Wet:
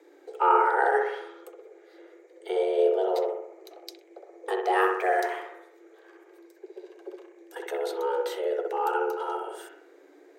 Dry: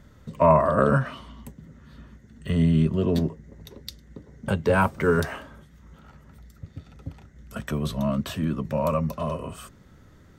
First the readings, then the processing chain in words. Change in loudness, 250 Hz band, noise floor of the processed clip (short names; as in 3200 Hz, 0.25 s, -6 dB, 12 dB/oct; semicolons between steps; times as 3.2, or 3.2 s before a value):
-2.5 dB, -12.5 dB, -56 dBFS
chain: analogue delay 63 ms, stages 1024, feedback 54%, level -3.5 dB; frequency shift +280 Hz; gain -5 dB